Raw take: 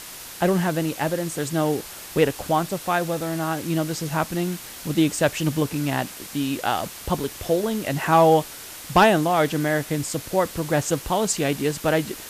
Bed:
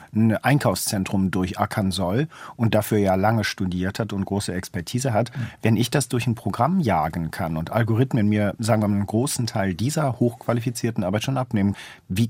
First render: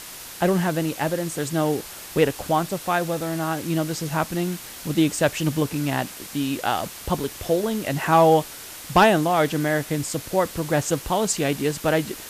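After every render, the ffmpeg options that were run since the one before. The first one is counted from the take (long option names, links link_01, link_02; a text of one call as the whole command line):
ffmpeg -i in.wav -af anull out.wav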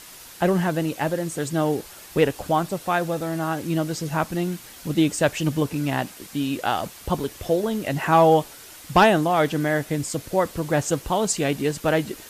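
ffmpeg -i in.wav -af "afftdn=noise_reduction=6:noise_floor=-39" out.wav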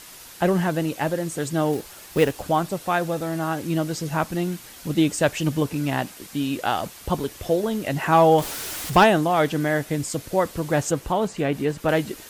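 ffmpeg -i in.wav -filter_complex "[0:a]asettb=1/sr,asplit=3[link_01][link_02][link_03];[link_01]atrim=end=1.734[link_04];[link_02]atrim=start=1.73:end=2.42,asetpts=PTS-STARTPTS,afade=type=in:duration=0.004:curve=qsin,afade=type=out:start_time=0.686:duration=0.004:curve=qsin,acrusher=bits=5:mode=log:mix=0:aa=0.000001[link_05];[link_03]atrim=start=2.416[link_06];[link_04][link_05]acrossfade=duration=0.004:curve1=hsin:curve2=qsin[link_07];[link_07][link_06]acrossfade=duration=0.004:curve1=qsin:curve2=hsin,asettb=1/sr,asplit=3[link_08][link_09][link_10];[link_08]atrim=end=8.384[link_11];[link_09]atrim=start=8.38:end=9.04,asetpts=PTS-STARTPTS,afade=type=in:duration=0.004:curve=qsin,afade=type=out:start_time=0.656:duration=0.004:curve=qsin,aeval=exprs='val(0)+0.5*0.0398*sgn(val(0))':channel_layout=same[link_12];[link_10]atrim=start=9.036[link_13];[link_11][link_12]acrossfade=duration=0.004:curve1=hsin:curve2=qsin[link_14];[link_14][link_13]acrossfade=duration=0.004:curve1=qsin:curve2=hsin,asettb=1/sr,asplit=3[link_15][link_16][link_17];[link_15]atrim=end=10.914[link_18];[link_16]atrim=start=10.91:end=11.89,asetpts=PTS-STARTPTS,afade=type=in:duration=0.004:curve=qsin,afade=type=out:start_time=0.976:duration=0.004:curve=qsin,acrossover=split=2600[link_19][link_20];[link_20]acompressor=threshold=-43dB:ratio=4:attack=1:release=60[link_21];[link_19][link_21]amix=inputs=2:normalize=0[link_22];[link_17]atrim=start=11.886[link_23];[link_18][link_22]acrossfade=duration=0.004:curve1=hsin:curve2=qsin[link_24];[link_24][link_23]acrossfade=duration=0.004:curve1=qsin:curve2=hsin" out.wav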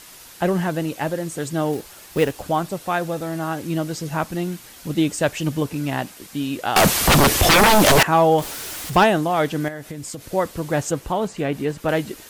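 ffmpeg -i in.wav -filter_complex "[0:a]asettb=1/sr,asplit=3[link_01][link_02][link_03];[link_01]atrim=end=6.764[link_04];[link_02]atrim=start=6.76:end=8.03,asetpts=PTS-STARTPTS,afade=type=in:duration=0.004:curve=qsin,afade=type=out:start_time=1.266:duration=0.004:curve=qsin,aeval=exprs='0.335*sin(PI/2*8.91*val(0)/0.335)':channel_layout=same[link_05];[link_03]atrim=start=8.026[link_06];[link_04][link_05]acrossfade=duration=0.004:curve1=hsin:curve2=qsin[link_07];[link_07][link_06]acrossfade=duration=0.004:curve1=qsin:curve2=hsin,asettb=1/sr,asplit=3[link_08][link_09][link_10];[link_08]atrim=end=9.684[link_11];[link_09]atrim=start=9.68:end=10.27,asetpts=PTS-STARTPTS,afade=type=in:duration=0.004:curve=qsin,afade=type=out:start_time=0.586:duration=0.004:curve=qsin,acompressor=threshold=-28dB:ratio=6:attack=3.2:release=140:knee=1:detection=peak[link_12];[link_10]atrim=start=10.266[link_13];[link_11][link_12]acrossfade=duration=0.004:curve1=hsin:curve2=qsin[link_14];[link_14][link_13]acrossfade=duration=0.004:curve1=qsin:curve2=hsin" out.wav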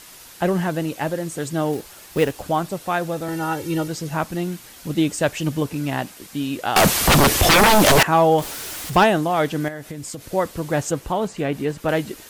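ffmpeg -i in.wav -filter_complex "[0:a]asettb=1/sr,asplit=3[link_01][link_02][link_03];[link_01]atrim=end=3.284[link_04];[link_02]atrim=start=3.28:end=3.88,asetpts=PTS-STARTPTS,afade=type=in:duration=0.004:curve=qsin,afade=type=out:start_time=0.596:duration=0.004:curve=qsin,aecho=1:1:2.2:0.97,atrim=end_sample=26460[link_05];[link_03]atrim=start=3.876[link_06];[link_04][link_05]acrossfade=duration=0.004:curve1=hsin:curve2=qsin[link_07];[link_07][link_06]acrossfade=duration=0.004:curve1=qsin:curve2=hsin" out.wav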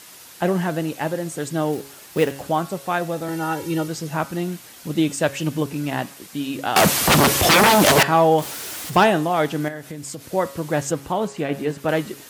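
ffmpeg -i in.wav -af "highpass=100,bandreject=frequency=138:width_type=h:width=4,bandreject=frequency=276:width_type=h:width=4,bandreject=frequency=414:width_type=h:width=4,bandreject=frequency=552:width_type=h:width=4,bandreject=frequency=690:width_type=h:width=4,bandreject=frequency=828:width_type=h:width=4,bandreject=frequency=966:width_type=h:width=4,bandreject=frequency=1104:width_type=h:width=4,bandreject=frequency=1242:width_type=h:width=4,bandreject=frequency=1380:width_type=h:width=4,bandreject=frequency=1518:width_type=h:width=4,bandreject=frequency=1656:width_type=h:width=4,bandreject=frequency=1794:width_type=h:width=4,bandreject=frequency=1932:width_type=h:width=4,bandreject=frequency=2070:width_type=h:width=4,bandreject=frequency=2208:width_type=h:width=4,bandreject=frequency=2346:width_type=h:width=4,bandreject=frequency=2484:width_type=h:width=4,bandreject=frequency=2622:width_type=h:width=4,bandreject=frequency=2760:width_type=h:width=4,bandreject=frequency=2898:width_type=h:width=4,bandreject=frequency=3036:width_type=h:width=4,bandreject=frequency=3174:width_type=h:width=4,bandreject=frequency=3312:width_type=h:width=4,bandreject=frequency=3450:width_type=h:width=4,bandreject=frequency=3588:width_type=h:width=4,bandreject=frequency=3726:width_type=h:width=4,bandreject=frequency=3864:width_type=h:width=4,bandreject=frequency=4002:width_type=h:width=4,bandreject=frequency=4140:width_type=h:width=4,bandreject=frequency=4278:width_type=h:width=4,bandreject=frequency=4416:width_type=h:width=4,bandreject=frequency=4554:width_type=h:width=4,bandreject=frequency=4692:width_type=h:width=4,bandreject=frequency=4830:width_type=h:width=4,bandreject=frequency=4968:width_type=h:width=4,bandreject=frequency=5106:width_type=h:width=4,bandreject=frequency=5244:width_type=h:width=4,bandreject=frequency=5382:width_type=h:width=4" out.wav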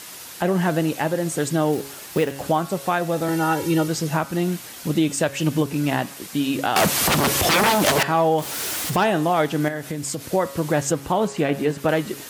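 ffmpeg -i in.wav -filter_complex "[0:a]asplit=2[link_01][link_02];[link_02]acompressor=threshold=-24dB:ratio=6,volume=-2dB[link_03];[link_01][link_03]amix=inputs=2:normalize=0,alimiter=limit=-10dB:level=0:latency=1:release=271" out.wav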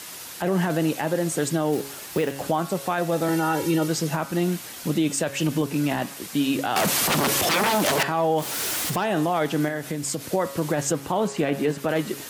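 ffmpeg -i in.wav -filter_complex "[0:a]acrossover=split=120[link_01][link_02];[link_01]acompressor=threshold=-49dB:ratio=6[link_03];[link_02]alimiter=limit=-13.5dB:level=0:latency=1:release=12[link_04];[link_03][link_04]amix=inputs=2:normalize=0" out.wav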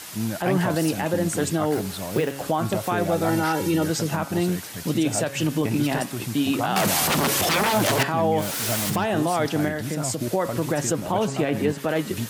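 ffmpeg -i in.wav -i bed.wav -filter_complex "[1:a]volume=-9dB[link_01];[0:a][link_01]amix=inputs=2:normalize=0" out.wav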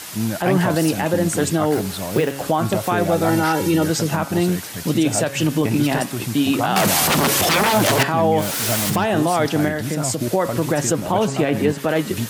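ffmpeg -i in.wav -af "volume=4.5dB" out.wav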